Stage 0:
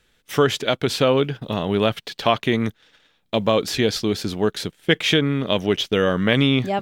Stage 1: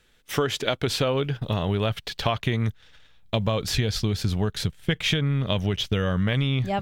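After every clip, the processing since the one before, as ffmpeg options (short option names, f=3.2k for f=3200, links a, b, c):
-af "asubboost=boost=10.5:cutoff=99,acompressor=threshold=-20dB:ratio=6"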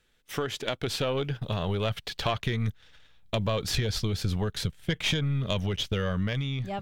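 -af "dynaudnorm=f=200:g=9:m=4.5dB,aeval=exprs='(tanh(3.16*val(0)+0.55)-tanh(0.55))/3.16':c=same,volume=-4.5dB"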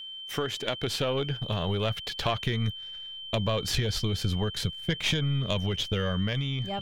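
-af "aeval=exprs='val(0)+0.0126*sin(2*PI*3100*n/s)':c=same"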